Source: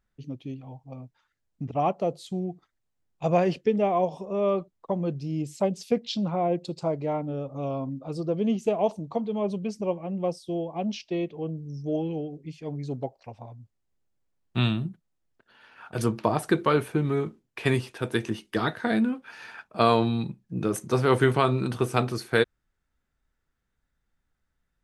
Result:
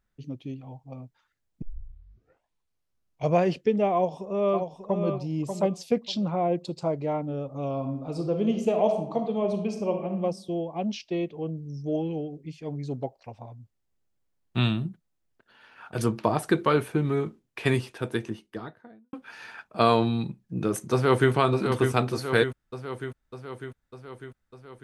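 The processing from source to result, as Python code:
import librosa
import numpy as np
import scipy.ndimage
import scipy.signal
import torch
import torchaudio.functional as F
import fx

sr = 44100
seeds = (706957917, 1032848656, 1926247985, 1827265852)

y = fx.echo_throw(x, sr, start_s=3.94, length_s=1.13, ms=590, feedback_pct=20, wet_db=-6.5)
y = fx.reverb_throw(y, sr, start_s=7.73, length_s=2.43, rt60_s=0.8, drr_db=4.5)
y = fx.studio_fade_out(y, sr, start_s=17.75, length_s=1.38)
y = fx.echo_throw(y, sr, start_s=20.92, length_s=0.4, ms=600, feedback_pct=65, wet_db=-6.5)
y = fx.edit(y, sr, fx.tape_start(start_s=1.62, length_s=1.76), tone=tone)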